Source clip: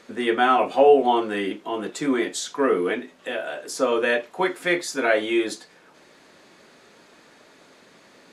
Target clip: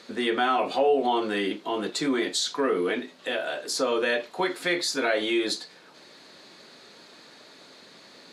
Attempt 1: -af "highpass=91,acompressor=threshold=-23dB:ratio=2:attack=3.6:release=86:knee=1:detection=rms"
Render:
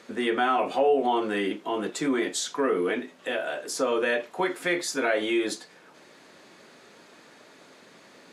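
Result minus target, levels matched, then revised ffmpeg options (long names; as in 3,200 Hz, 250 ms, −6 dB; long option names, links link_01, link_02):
4,000 Hz band −4.5 dB
-af "highpass=91,equalizer=frequency=4200:width=2.5:gain=10.5,acompressor=threshold=-23dB:ratio=2:attack=3.6:release=86:knee=1:detection=rms"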